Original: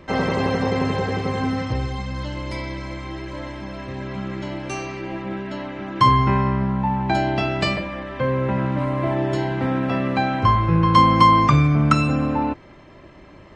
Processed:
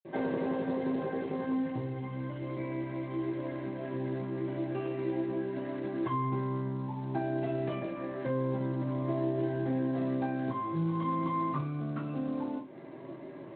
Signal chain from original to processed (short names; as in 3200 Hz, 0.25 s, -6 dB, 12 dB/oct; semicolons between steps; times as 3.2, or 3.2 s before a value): steep low-pass 3400 Hz 72 dB/oct; notch 1300 Hz, Q 7.5; compressor 3:1, threshold -34 dBFS, peak gain reduction 17.5 dB; 1.28–1.69 small resonant body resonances 910/1800 Hz, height 7 dB -> 10 dB, ringing for 80 ms; reverb, pre-delay 47 ms; gain +4.5 dB; Speex 21 kbps 16000 Hz